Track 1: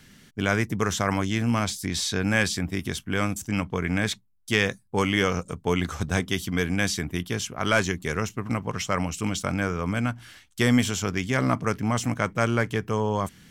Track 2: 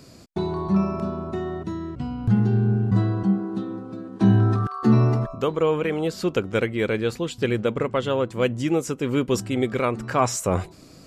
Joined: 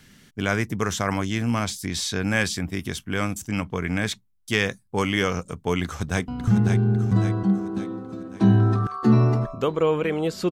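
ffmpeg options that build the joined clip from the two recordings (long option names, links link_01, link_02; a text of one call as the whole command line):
ffmpeg -i cue0.wav -i cue1.wav -filter_complex "[0:a]apad=whole_dur=10.51,atrim=end=10.51,atrim=end=6.282[link_01];[1:a]atrim=start=2.078:end=6.31[link_02];[link_01][link_02]acrossfade=duration=0.004:curve1=hsin:curve2=hsin,asplit=2[link_03][link_04];[link_04]afade=type=in:start_time=5.84:duration=0.01,afade=type=out:start_time=6.28:duration=0.01,aecho=0:1:550|1100|1650|2200|2750|3300:0.501187|0.250594|0.125297|0.0626484|0.0313242|0.0156621[link_05];[link_03][link_05]amix=inputs=2:normalize=0" out.wav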